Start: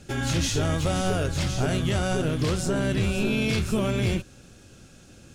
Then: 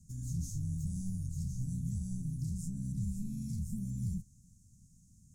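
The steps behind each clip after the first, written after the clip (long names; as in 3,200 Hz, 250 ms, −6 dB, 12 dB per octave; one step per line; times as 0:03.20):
elliptic band-stop filter 190–6,700 Hz, stop band 40 dB
dynamic equaliser 6,600 Hz, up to −5 dB, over −46 dBFS, Q 0.7
level −9 dB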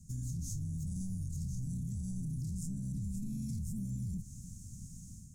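automatic gain control gain up to 10 dB
brickwall limiter −31.5 dBFS, peak gain reduction 14.5 dB
downward compressor, threshold −39 dBFS, peak gain reduction 5 dB
level +4 dB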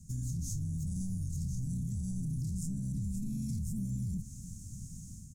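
single-tap delay 818 ms −20.5 dB
level +2.5 dB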